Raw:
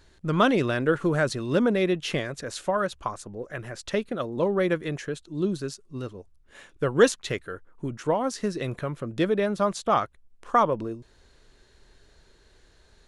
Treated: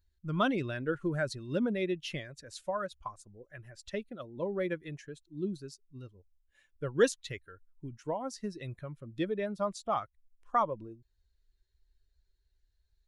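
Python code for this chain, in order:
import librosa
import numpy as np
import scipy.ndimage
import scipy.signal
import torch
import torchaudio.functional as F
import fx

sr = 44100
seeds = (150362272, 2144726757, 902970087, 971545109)

y = fx.bin_expand(x, sr, power=1.5)
y = F.gain(torch.from_numpy(y), -6.0).numpy()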